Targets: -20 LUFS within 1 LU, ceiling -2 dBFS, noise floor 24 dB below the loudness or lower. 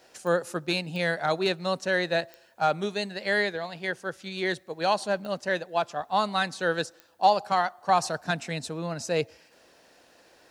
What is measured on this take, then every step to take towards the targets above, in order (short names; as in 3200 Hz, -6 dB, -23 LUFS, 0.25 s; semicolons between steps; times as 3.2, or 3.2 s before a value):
clicks 5; loudness -28.0 LUFS; peak -9.0 dBFS; loudness target -20.0 LUFS
-> de-click; gain +8 dB; limiter -2 dBFS